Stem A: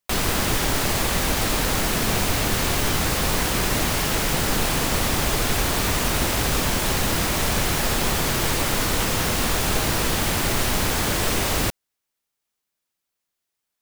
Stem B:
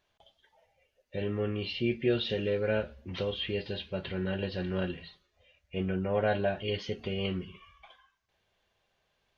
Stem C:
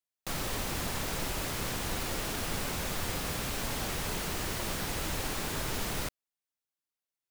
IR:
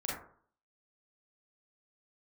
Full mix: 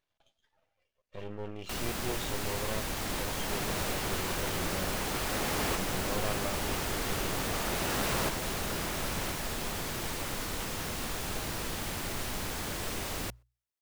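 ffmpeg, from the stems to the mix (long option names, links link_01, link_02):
-filter_complex "[0:a]bandreject=frequency=60:width_type=h:width=6,bandreject=frequency=120:width_type=h:width=6,adelay=1600,volume=-13.5dB[link_01];[1:a]aeval=exprs='max(val(0),0)':channel_layout=same,volume=-5dB,asplit=2[link_02][link_03];[2:a]equalizer=frequency=440:width=0.35:gain=11.5,aeval=exprs='0.119*sin(PI/2*3.16*val(0)/0.119)':channel_layout=same,adelay=2200,volume=-9.5dB,asplit=2[link_04][link_05];[link_05]volume=-8.5dB[link_06];[link_03]apad=whole_len=419058[link_07];[link_04][link_07]sidechaincompress=threshold=-42dB:ratio=8:attack=5.4:release=1180[link_08];[link_06]aecho=0:1:1028|2056|3084|4112|5140:1|0.35|0.122|0.0429|0.015[link_09];[link_01][link_02][link_08][link_09]amix=inputs=4:normalize=0"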